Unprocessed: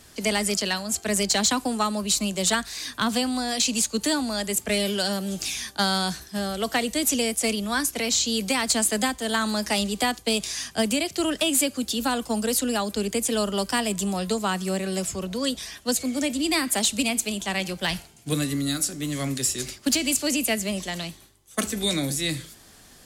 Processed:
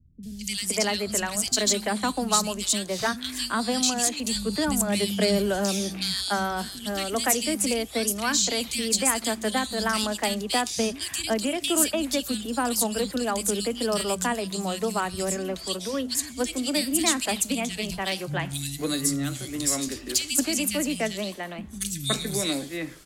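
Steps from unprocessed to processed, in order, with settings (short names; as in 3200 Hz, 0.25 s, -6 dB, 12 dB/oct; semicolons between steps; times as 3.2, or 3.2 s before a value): 4.35–5.57 low shelf 440 Hz +8 dB; three bands offset in time lows, highs, mids 0.23/0.52 s, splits 190/2500 Hz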